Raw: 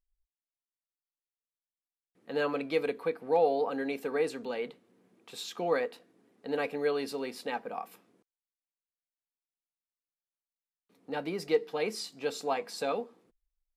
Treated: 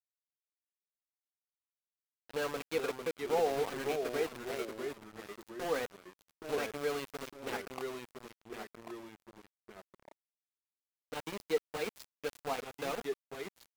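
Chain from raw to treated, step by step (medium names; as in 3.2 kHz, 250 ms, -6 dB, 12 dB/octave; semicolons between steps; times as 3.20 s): small samples zeroed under -31 dBFS; ever faster or slower copies 138 ms, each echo -2 st, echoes 2, each echo -6 dB; tape noise reduction on one side only decoder only; trim -5 dB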